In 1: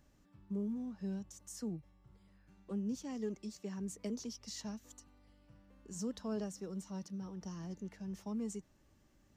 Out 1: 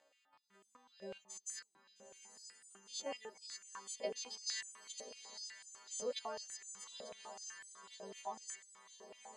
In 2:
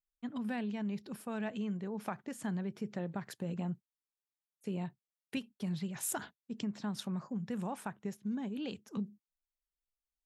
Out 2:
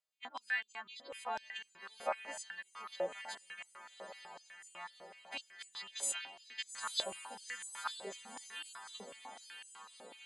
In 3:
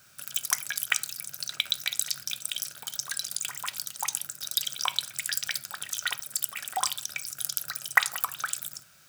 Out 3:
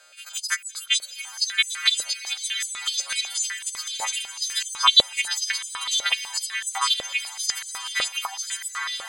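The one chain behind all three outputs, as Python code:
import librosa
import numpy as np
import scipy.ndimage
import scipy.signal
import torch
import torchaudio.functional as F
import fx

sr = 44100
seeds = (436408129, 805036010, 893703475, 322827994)

p1 = fx.freq_snap(x, sr, grid_st=2)
p2 = fx.notch(p1, sr, hz=5600.0, q=8.5)
p3 = fx.dereverb_blind(p2, sr, rt60_s=0.56)
p4 = fx.high_shelf(p3, sr, hz=3700.0, db=6.0)
p5 = fx.level_steps(p4, sr, step_db=22)
p6 = p4 + F.gain(torch.from_numpy(p5), 2.0).numpy()
p7 = fx.air_absorb(p6, sr, metres=120.0)
p8 = p7 + fx.echo_diffused(p7, sr, ms=897, feedback_pct=60, wet_db=-9.0, dry=0)
p9 = fx.filter_held_highpass(p8, sr, hz=8.0, low_hz=550.0, high_hz=7700.0)
y = F.gain(torch.from_numpy(p9), -5.0).numpy()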